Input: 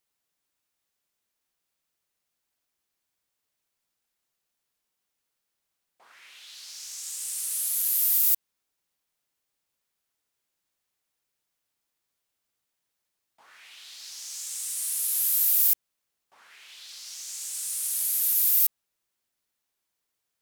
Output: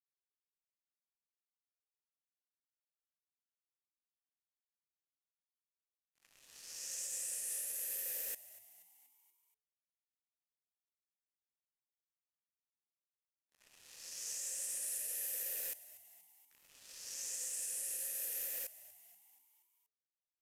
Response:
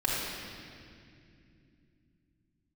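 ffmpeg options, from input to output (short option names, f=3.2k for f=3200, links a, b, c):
-filter_complex "[0:a]aeval=exprs='if(lt(val(0),0),0.447*val(0),val(0))':c=same,aexciter=amount=4.6:drive=9.6:freq=5.5k,acompressor=threshold=-15dB:ratio=2,asplit=3[a][b][c];[a]bandpass=f=530:t=q:w=8,volume=0dB[d];[b]bandpass=f=1.84k:t=q:w=8,volume=-6dB[e];[c]bandpass=f=2.48k:t=q:w=8,volume=-9dB[f];[d][e][f]amix=inputs=3:normalize=0,highshelf=f=2.5k:g=5.5,aeval=exprs='sgn(val(0))*max(abs(val(0))-0.00133,0)':c=same,aresample=32000,aresample=44100,alimiter=level_in=14.5dB:limit=-24dB:level=0:latency=1:release=139,volume=-14.5dB,asplit=6[g][h][i][j][k][l];[h]adelay=239,afreqshift=86,volume=-17.5dB[m];[i]adelay=478,afreqshift=172,volume=-22.4dB[n];[j]adelay=717,afreqshift=258,volume=-27.3dB[o];[k]adelay=956,afreqshift=344,volume=-32.1dB[p];[l]adelay=1195,afreqshift=430,volume=-37dB[q];[g][m][n][o][p][q]amix=inputs=6:normalize=0,volume=7.5dB"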